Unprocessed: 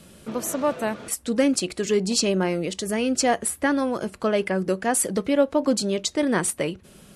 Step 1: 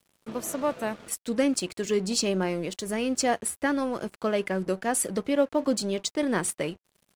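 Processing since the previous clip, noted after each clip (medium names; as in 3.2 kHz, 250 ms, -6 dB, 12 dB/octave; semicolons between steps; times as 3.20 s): crossover distortion -43.5 dBFS; trim -3.5 dB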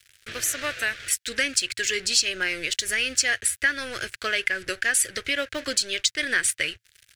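FFT filter 110 Hz 0 dB, 190 Hz -25 dB, 350 Hz -13 dB, 540 Hz -13 dB, 980 Hz -20 dB, 1.6 kHz +9 dB, 6.1 kHz +6 dB, 13 kHz +1 dB; compression 2:1, threshold -32 dBFS, peak gain reduction 9 dB; trim +8.5 dB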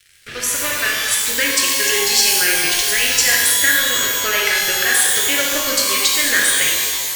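pitch-shifted reverb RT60 1.6 s, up +12 st, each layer -2 dB, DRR -2.5 dB; trim +3 dB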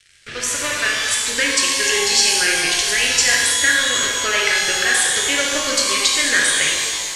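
low-pass 9.1 kHz 24 dB/octave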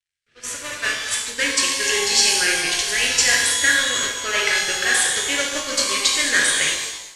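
expander -15 dBFS; trim -1 dB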